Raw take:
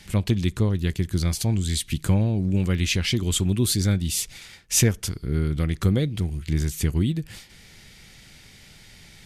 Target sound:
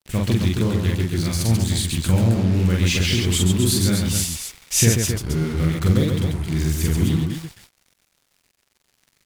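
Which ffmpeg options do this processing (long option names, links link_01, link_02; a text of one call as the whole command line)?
ffmpeg -i in.wav -af "acrusher=bits=5:mix=0:aa=0.5,aecho=1:1:43.73|137|265.3:0.891|0.631|0.501" out.wav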